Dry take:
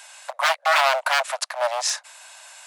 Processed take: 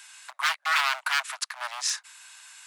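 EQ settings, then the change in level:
high-pass filter 1,100 Hz 24 dB per octave
−3.5 dB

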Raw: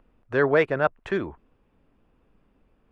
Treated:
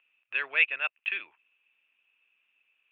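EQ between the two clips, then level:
high-pass with resonance 2,600 Hz, resonance Q 12
Butterworth low-pass 3,900 Hz 72 dB per octave
spectral tilt −3 dB per octave
0.0 dB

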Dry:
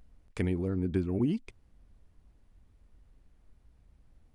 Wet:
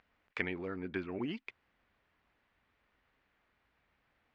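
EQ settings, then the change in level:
resonant band-pass 2,000 Hz, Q 1.1
high-frequency loss of the air 130 metres
+9.0 dB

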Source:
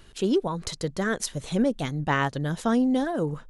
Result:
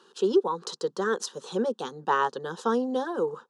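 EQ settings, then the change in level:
high-pass filter 280 Hz 24 dB per octave
high-frequency loss of the air 93 metres
phaser with its sweep stopped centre 430 Hz, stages 8
+4.5 dB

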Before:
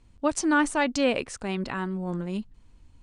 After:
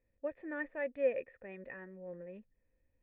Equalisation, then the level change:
formant resonators in series e
parametric band 1,700 Hz +4 dB 0.6 octaves
−3.5 dB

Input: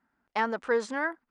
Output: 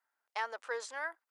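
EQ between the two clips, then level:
high-pass filter 500 Hz 24 dB per octave
high-shelf EQ 4,000 Hz +11.5 dB
−9.0 dB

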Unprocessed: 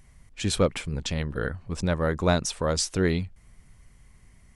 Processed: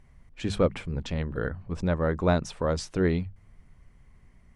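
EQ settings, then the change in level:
low-pass filter 1,600 Hz 6 dB per octave
mains-hum notches 50/100 Hz
mains-hum notches 50/100/150/200 Hz
0.0 dB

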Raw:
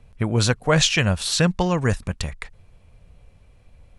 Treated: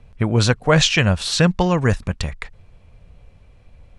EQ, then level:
high-frequency loss of the air 50 metres
+3.5 dB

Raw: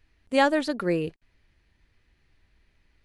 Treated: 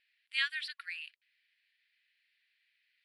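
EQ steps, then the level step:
linear-phase brick-wall high-pass 1,100 Hz
low-pass filter 8,200 Hz 12 dB per octave
phaser with its sweep stopped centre 2,900 Hz, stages 4
0.0 dB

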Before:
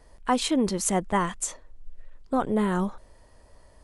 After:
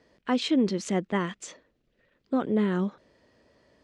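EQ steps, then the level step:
high-pass filter 210 Hz 12 dB per octave
high-frequency loss of the air 180 metres
parametric band 900 Hz −12.5 dB 1.5 octaves
+4.5 dB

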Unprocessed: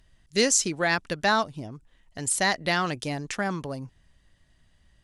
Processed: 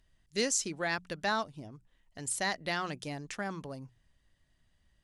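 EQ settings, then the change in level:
mains-hum notches 60/120/180 Hz
−8.5 dB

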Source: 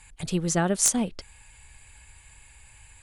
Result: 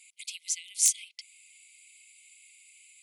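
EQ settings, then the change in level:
linear-phase brick-wall high-pass 2,000 Hz
−1.0 dB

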